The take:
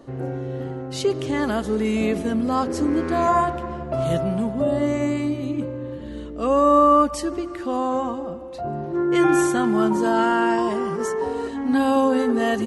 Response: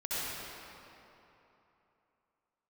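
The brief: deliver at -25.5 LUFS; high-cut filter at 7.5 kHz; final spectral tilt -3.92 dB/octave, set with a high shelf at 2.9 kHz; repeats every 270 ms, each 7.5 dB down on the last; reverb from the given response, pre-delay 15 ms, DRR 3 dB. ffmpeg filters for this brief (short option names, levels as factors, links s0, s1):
-filter_complex "[0:a]lowpass=7500,highshelf=f=2900:g=-8.5,aecho=1:1:270|540|810|1080|1350:0.422|0.177|0.0744|0.0312|0.0131,asplit=2[s0][s1];[1:a]atrim=start_sample=2205,adelay=15[s2];[s1][s2]afir=irnorm=-1:irlink=0,volume=0.335[s3];[s0][s3]amix=inputs=2:normalize=0,volume=0.531"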